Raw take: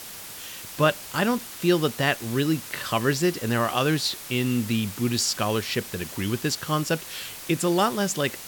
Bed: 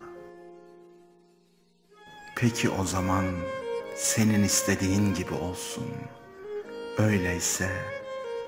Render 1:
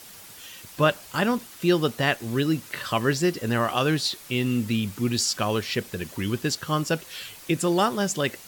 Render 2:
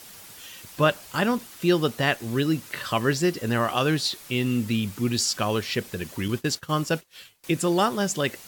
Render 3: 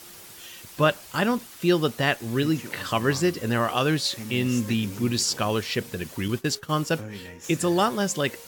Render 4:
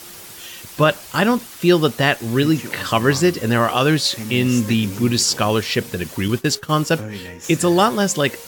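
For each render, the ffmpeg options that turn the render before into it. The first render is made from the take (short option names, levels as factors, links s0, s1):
-af "afftdn=nr=7:nf=-40"
-filter_complex "[0:a]asettb=1/sr,asplit=3[s0][s1][s2];[s0]atrim=end=6.284[s3];[s1]atrim=start=6.28:end=7.44,asetpts=PTS-STARTPTS,afade=t=in:d=0.004:c=qsin,afade=t=out:st=1.156:d=0.004:c=qsin,agate=range=0.0224:threshold=0.0282:ratio=3:release=100:detection=peak[s4];[s2]atrim=start=7.436[s5];[s3][s4]acrossfade=d=0.004:c1=hsin:c2=qsin[s6];[s6][s5]acrossfade=d=0.004:c1=qsin:c2=hsin"
-filter_complex "[1:a]volume=0.2[s0];[0:a][s0]amix=inputs=2:normalize=0"
-af "volume=2.24,alimiter=limit=0.708:level=0:latency=1"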